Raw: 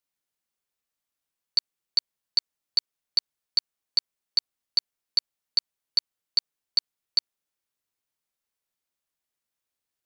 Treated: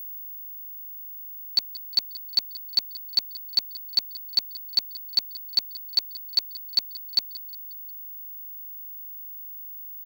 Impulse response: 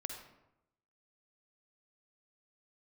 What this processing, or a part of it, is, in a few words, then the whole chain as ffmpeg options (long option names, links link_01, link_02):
old television with a line whistle: -filter_complex "[0:a]bandreject=frequency=1200:width=7.1,asettb=1/sr,asplit=3[link_01][link_02][link_03];[link_01]atrim=end=5.984[link_04];[link_02]atrim=start=5.98:end=6.78,asetpts=PTS-STARTPTS,afade=type=in:duration=0.004:curve=qsin,afade=type=out:start_time=0.796:duration=0.004:curve=qsin,highpass=frequency=300:width=0.5412,highpass=frequency=300:width=1.3066[link_05];[link_03]atrim=start=6.776[link_06];[link_04][link_05]acrossfade=duration=0.004:curve1=hsin:curve2=qsin[link_07];[link_07][link_06]acrossfade=duration=0.004:curve1=qsin:curve2=hsin,highpass=frequency=170:width=0.5412,highpass=frequency=170:width=1.3066,equalizer=frequency=490:width_type=q:width=4:gain=4,equalizer=frequency=1700:width_type=q:width=4:gain=-7,equalizer=frequency=3000:width_type=q:width=4:gain=-7,equalizer=frequency=5100:width_type=q:width=4:gain=-6,lowpass=frequency=8000:width=0.5412,lowpass=frequency=8000:width=1.3066,aeval=exprs='val(0)+0.0126*sin(2*PI*15625*n/s)':channel_layout=same,aecho=1:1:179|358|537|716:0.126|0.0592|0.0278|0.0131,volume=3.5dB"